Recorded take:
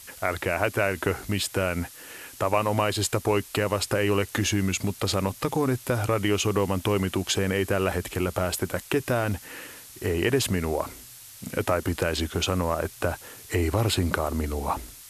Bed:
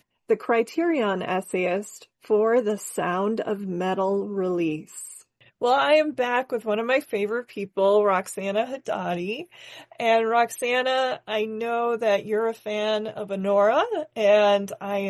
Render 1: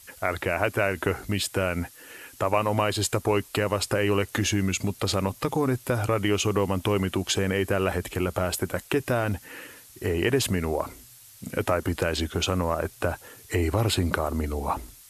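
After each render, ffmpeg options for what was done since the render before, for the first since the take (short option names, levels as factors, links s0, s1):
-af "afftdn=nr=6:nf=-46"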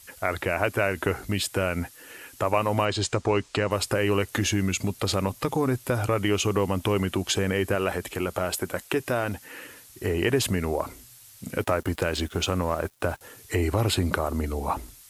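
-filter_complex "[0:a]asettb=1/sr,asplit=3[s0][s1][s2];[s0]atrim=end=2.854[s3];[s1]atrim=start=2.85:end=3.71,asetpts=PTS-STARTPTS,afade=t=in:d=0.004:c=qsin,afade=t=out:st=0.856:d=0.004:c=qsin,lowpass=f=7400:w=0.5412,lowpass=f=7400:w=1.3066[s4];[s2]atrim=start=3.706[s5];[s3][s4]acrossfade=d=0.004:c1=hsin:c2=qsin[s6];[s6][s5]acrossfade=d=0.004:c1=qsin:c2=hsin,asettb=1/sr,asplit=3[s7][s8][s9];[s7]atrim=end=7.754[s10];[s8]atrim=start=7.75:end=9.62,asetpts=PTS-STARTPTS,afade=t=in:d=0.004:c=qsin,afade=t=out:st=1.866:d=0.004:c=qsin,lowshelf=f=160:g=-7.5[s11];[s9]atrim=start=9.616[s12];[s10][s11]acrossfade=d=0.004:c1=hsin:c2=qsin[s13];[s13][s12]acrossfade=d=0.004:c1=qsin:c2=hsin,asettb=1/sr,asplit=3[s14][s15][s16];[s14]atrim=end=11.574[s17];[s15]atrim=start=11.57:end=13.21,asetpts=PTS-STARTPTS,afade=t=in:d=0.004:c=qsin,afade=t=out:st=1.636:d=0.004:c=qsin,aeval=exprs='sgn(val(0))*max(abs(val(0))-0.00473,0)':c=same[s18];[s16]atrim=start=13.206[s19];[s17][s18]acrossfade=d=0.004:c1=hsin:c2=qsin[s20];[s20][s19]acrossfade=d=0.004:c1=qsin:c2=hsin"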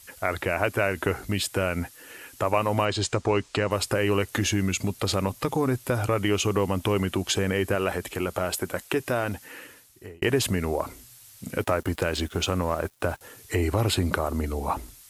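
-filter_complex "[0:a]asplit=2[s0][s1];[s0]atrim=end=10.22,asetpts=PTS-STARTPTS,afade=t=out:st=9.48:d=0.74[s2];[s1]atrim=start=10.22,asetpts=PTS-STARTPTS,afade=t=in:d=0.004:c=hsin[s3];[s2][s3]concat=n=2:v=0:a=1"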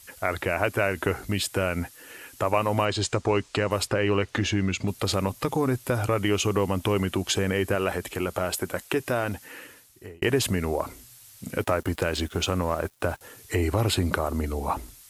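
-filter_complex "[0:a]asettb=1/sr,asplit=3[s0][s1][s2];[s0]atrim=end=3.874[s3];[s1]atrim=start=3.87:end=4.88,asetpts=PTS-STARTPTS,afade=t=in:d=0.004:c=qsin,afade=t=out:st=1.006:d=0.004:c=qsin,lowpass=4900[s4];[s2]atrim=start=4.876[s5];[s3][s4]acrossfade=d=0.004:c1=hsin:c2=qsin[s6];[s6][s5]acrossfade=d=0.004:c1=qsin:c2=hsin"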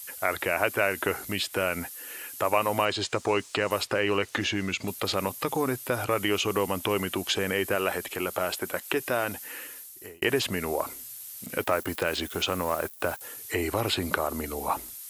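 -filter_complex "[0:a]acrossover=split=4200[s0][s1];[s1]acompressor=threshold=0.00316:ratio=4:attack=1:release=60[s2];[s0][s2]amix=inputs=2:normalize=0,aemphasis=mode=production:type=bsi"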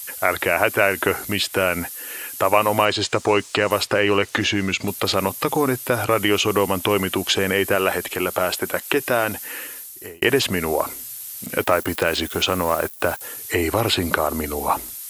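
-af "volume=2.37,alimiter=limit=0.891:level=0:latency=1"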